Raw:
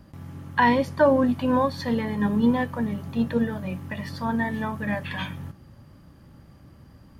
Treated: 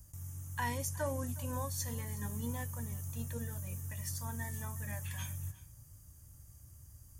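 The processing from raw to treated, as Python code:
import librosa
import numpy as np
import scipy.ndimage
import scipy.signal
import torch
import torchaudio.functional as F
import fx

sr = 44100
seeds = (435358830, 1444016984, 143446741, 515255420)

p1 = fx.curve_eq(x, sr, hz=(100.0, 200.0, 4400.0, 6400.0), db=(0, -20, -11, 15))
p2 = p1 + fx.echo_single(p1, sr, ms=364, db=-19.5, dry=0)
y = p2 * librosa.db_to_amplitude(-2.5)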